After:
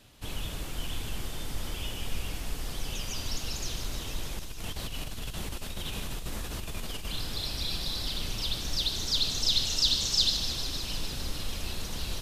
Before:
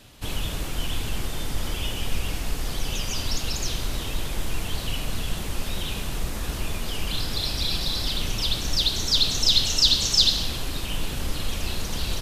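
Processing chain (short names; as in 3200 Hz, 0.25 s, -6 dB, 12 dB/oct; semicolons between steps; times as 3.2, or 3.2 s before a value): 4.39–7.07 negative-ratio compressor -28 dBFS, ratio -1; thin delay 0.152 s, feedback 81%, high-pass 3900 Hz, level -9 dB; gain -7 dB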